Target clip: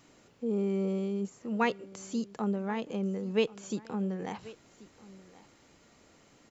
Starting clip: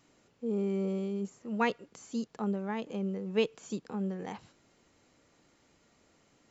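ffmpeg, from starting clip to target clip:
-filter_complex "[0:a]asplit=2[a][b];[b]acompressor=threshold=-45dB:ratio=6,volume=-0.5dB[c];[a][c]amix=inputs=2:normalize=0,aecho=1:1:1085:0.1"

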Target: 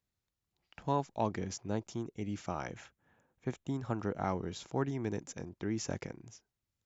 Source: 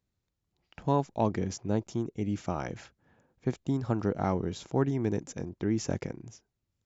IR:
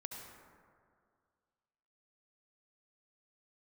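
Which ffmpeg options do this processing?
-filter_complex "[0:a]asettb=1/sr,asplit=3[a][b][c];[a]atrim=end=2.704[d];[b]atrim=start=2.7:end=4.28,asetpts=PTS-STARTPTS,afade=t=in:d=0.004:c=qsin,afade=t=out:st=1.576:d=0.004:c=qsin,equalizer=f=4.7k:t=o:w=0.37:g=-8[e];[c]atrim=start=4.276[f];[d][e]acrossfade=d=0.004:c1=hsin:c2=qsin[g];[g][f]acrossfade=d=0.004:c1=qsin:c2=hsin,acrossover=split=730[h][i];[i]acontrast=29[j];[h][j]amix=inputs=2:normalize=0,volume=-7dB"

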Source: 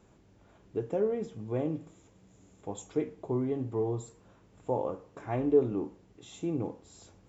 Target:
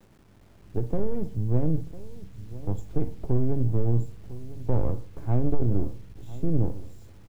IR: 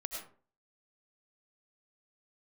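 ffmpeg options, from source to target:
-filter_complex "[0:a]aeval=exprs='if(lt(val(0),0),0.251*val(0),val(0))':c=same,tiltshelf=f=830:g=8,acrossover=split=130[a][b];[a]dynaudnorm=f=220:g=7:m=14.5dB[c];[c][b]amix=inputs=2:normalize=0,asoftclip=type=tanh:threshold=-13dB,asplit=2[d][e];[e]adelay=1001,lowpass=f=2k:p=1,volume=-16.5dB,asplit=2[f][g];[g]adelay=1001,lowpass=f=2k:p=1,volume=0.38,asplit=2[h][i];[i]adelay=1001,lowpass=f=2k:p=1,volume=0.38[j];[f][h][j]amix=inputs=3:normalize=0[k];[d][k]amix=inputs=2:normalize=0,acrusher=bits=9:mix=0:aa=0.000001"

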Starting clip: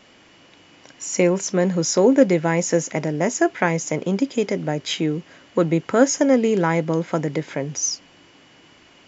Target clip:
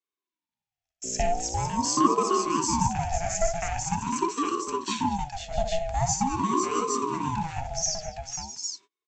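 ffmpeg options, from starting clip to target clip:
-filter_complex "[0:a]agate=range=-36dB:threshold=-37dB:ratio=16:detection=peak,firequalizer=gain_entry='entry(110,0);entry(190,-27);entry(290,7);entry(420,8);entry(650,-20);entry(1800,1);entry(8600,10)':delay=0.05:min_phase=1,asettb=1/sr,asplit=3[a][b][c];[a]atrim=end=1.044[d];[b]atrim=start=1.04:end=1.67,asetpts=PTS-STARTPTS,afade=t=in:d=0.004:c=qsin,afade=t=out:st=0.626:d=0.004:c=qsin,aeval=exprs='val(0)+0.0501*(sin(2*PI*60*n/s)+sin(2*PI*2*60*n/s)/2+sin(2*PI*3*60*n/s)/3+sin(2*PI*4*60*n/s)/4+sin(2*PI*5*60*n/s)/5)':c=same[e];[c]atrim=start=1.666[f];[d][e]acrossfade=d=0.004:c1=hsin:c2=qsin[g];[g][f]acrossfade=d=0.004:c1=qsin:c2=hsin,asplit=2[h][i];[i]aecho=0:1:60|203|503|660|811:0.447|0.133|0.447|0.211|0.596[j];[h][j]amix=inputs=2:normalize=0,aeval=exprs='val(0)*sin(2*PI*530*n/s+530*0.4/0.44*sin(2*PI*0.44*n/s))':c=same,volume=-9dB"

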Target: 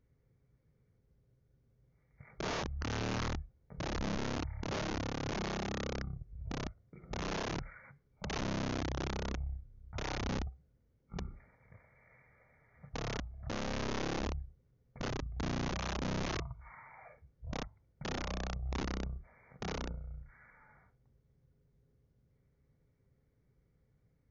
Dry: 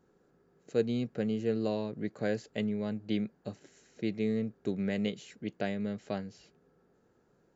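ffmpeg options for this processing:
-af "aeval=exprs='(mod(26.6*val(0)+1,2)-1)/26.6':c=same,asetrate=13715,aresample=44100,volume=-3dB"

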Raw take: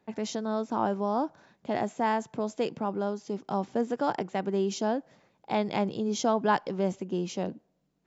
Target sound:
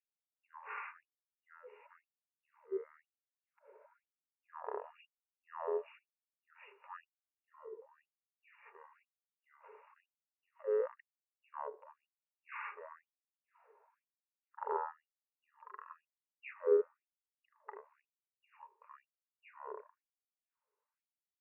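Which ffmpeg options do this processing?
-filter_complex "[0:a]asplit=3[a][b][c];[a]bandpass=f=730:t=q:w=8,volume=0dB[d];[b]bandpass=f=1.09k:t=q:w=8,volume=-6dB[e];[c]bandpass=f=2.44k:t=q:w=8,volume=-9dB[f];[d][e][f]amix=inputs=3:normalize=0,asetrate=16626,aresample=44100,bandreject=f=50:t=h:w=6,bandreject=f=100:t=h:w=6,bandreject=f=150:t=h:w=6,bandreject=f=200:t=h:w=6,bandreject=f=250:t=h:w=6,bandreject=f=300:t=h:w=6,bandreject=f=350:t=h:w=6,bandreject=f=400:t=h:w=6,asplit=2[g][h];[h]adelay=76,lowpass=f=2k:p=1,volume=-20dB,asplit=2[i][j];[j]adelay=76,lowpass=f=2k:p=1,volume=0.34,asplit=2[k][l];[l]adelay=76,lowpass=f=2k:p=1,volume=0.34[m];[g][i][k][m]amix=inputs=4:normalize=0,afftfilt=real='re*gte(b*sr/1024,380*pow(6800/380,0.5+0.5*sin(2*PI*1*pts/sr)))':imag='im*gte(b*sr/1024,380*pow(6800/380,0.5+0.5*sin(2*PI*1*pts/sr)))':win_size=1024:overlap=0.75,volume=16dB"

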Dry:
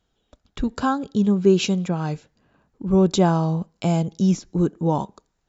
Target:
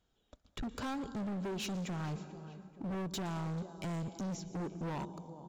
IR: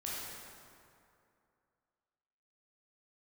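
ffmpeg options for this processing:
-filter_complex "[0:a]acompressor=threshold=-22dB:ratio=6,asplit=2[a][b];[b]adelay=439,lowpass=f=4.3k:p=1,volume=-19dB,asplit=2[c][d];[d]adelay=439,lowpass=f=4.3k:p=1,volume=0.5,asplit=2[e][f];[f]adelay=439,lowpass=f=4.3k:p=1,volume=0.5,asplit=2[g][h];[h]adelay=439,lowpass=f=4.3k:p=1,volume=0.5[i];[a][c][e][g][i]amix=inputs=5:normalize=0,asplit=2[j][k];[1:a]atrim=start_sample=2205,highshelf=f=6.6k:g=11.5,adelay=117[l];[k][l]afir=irnorm=-1:irlink=0,volume=-18.5dB[m];[j][m]amix=inputs=2:normalize=0,asoftclip=type=hard:threshold=-30dB,volume=-6dB"

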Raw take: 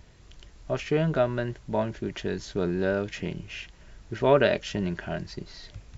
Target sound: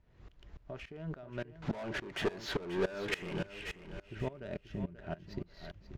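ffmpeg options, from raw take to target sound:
-filter_complex "[0:a]asettb=1/sr,asplit=3[a][b][c];[a]atrim=end=4.164[d];[b]atrim=start=4.16:end=5.02,asetpts=PTS-STARTPTS,afade=t=in:d=0.004:c=qsin,afade=t=out:st=0.856:d=0.004:c=qsin,lowshelf=f=290:g=12[e];[c]atrim=start=5.016[f];[d][e]acrossfade=d=0.004:c1=hsin:c2=qsin[g];[g][f]acrossfade=d=0.004:c1=qsin:c2=hsin,acompressor=threshold=-34dB:ratio=8,asettb=1/sr,asplit=3[h][i][j];[h]atrim=end=1.624[k];[i]atrim=start=1.62:end=3.47,asetpts=PTS-STARTPTS,afade=t=in:d=0.004:c=qsin,afade=t=out:st=1.846:d=0.004:c=qsin,asplit=2[l][m];[m]highpass=f=720:p=1,volume=27dB,asoftclip=type=tanh:threshold=-22.5dB[n];[l][n]amix=inputs=2:normalize=0,lowpass=f=3.3k:p=1,volume=-6dB[o];[j]atrim=start=3.466[p];[k][o]acrossfade=d=0.004:c1=hsin:c2=qsin[q];[q][p]acrossfade=d=0.004:c1=qsin:c2=hsin,adynamicsmooth=sensitivity=7:basefreq=2.7k,asplit=2[r][s];[s]aecho=0:1:534|1068|1602|2136:0.335|0.111|0.0365|0.012[t];[r][t]amix=inputs=2:normalize=0,aeval=exprs='val(0)*pow(10,-21*if(lt(mod(-3.5*n/s,1),2*abs(-3.5)/1000),1-mod(-3.5*n/s,1)/(2*abs(-3.5)/1000),(mod(-3.5*n/s,1)-2*abs(-3.5)/1000)/(1-2*abs(-3.5)/1000))/20)':c=same,volume=2.5dB"

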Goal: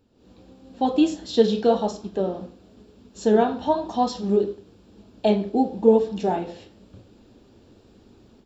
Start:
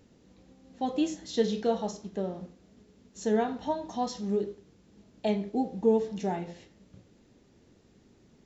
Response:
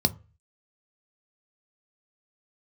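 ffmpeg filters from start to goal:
-af "flanger=delay=0.8:depth=9.2:regen=-74:speed=0.98:shape=sinusoidal,equalizer=f=160:t=o:w=0.33:g=-11,equalizer=f=2k:t=o:w=0.33:g=-11,equalizer=f=6.3k:t=o:w=0.33:g=-11,dynaudnorm=f=140:g=3:m=13.5dB"

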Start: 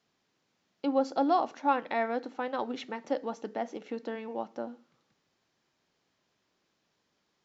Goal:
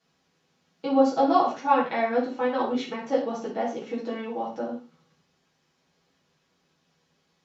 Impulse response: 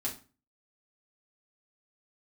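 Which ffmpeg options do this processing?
-filter_complex "[1:a]atrim=start_sample=2205,atrim=end_sample=3969,asetrate=27783,aresample=44100[a];[0:a][a]afir=irnorm=-1:irlink=0"

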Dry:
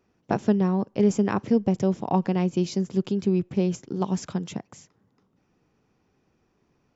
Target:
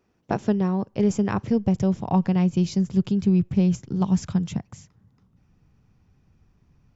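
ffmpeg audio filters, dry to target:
-af "asubboost=boost=8.5:cutoff=130"

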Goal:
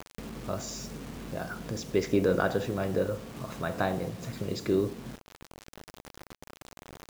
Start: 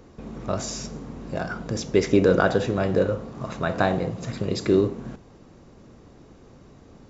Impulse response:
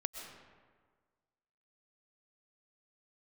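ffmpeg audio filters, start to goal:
-af "acrusher=bits=6:mix=0:aa=0.000001,acompressor=mode=upward:threshold=-27dB:ratio=2.5,volume=-7dB"

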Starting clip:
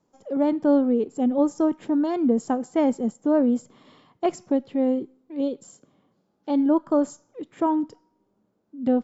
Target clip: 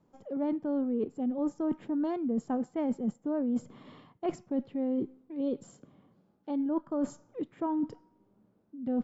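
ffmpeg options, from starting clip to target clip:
-af "bass=f=250:g=6,treble=f=4k:g=-10,areverse,acompressor=threshold=-28dB:ratio=10,areverse"

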